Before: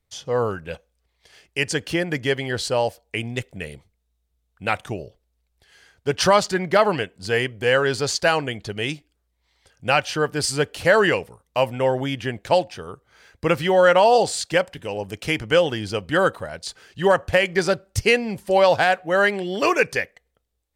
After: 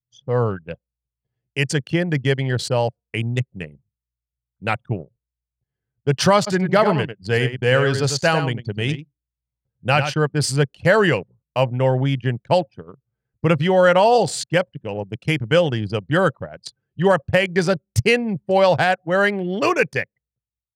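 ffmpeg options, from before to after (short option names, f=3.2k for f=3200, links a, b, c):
-filter_complex "[0:a]asplit=3[a][b][c];[a]afade=t=out:st=6.46:d=0.02[d];[b]aecho=1:1:98:0.398,afade=t=in:st=6.46:d=0.02,afade=t=out:st=10.11:d=0.02[e];[c]afade=t=in:st=10.11:d=0.02[f];[d][e][f]amix=inputs=3:normalize=0,anlmdn=63.1,highpass=100,equalizer=f=130:w=1.2:g=12"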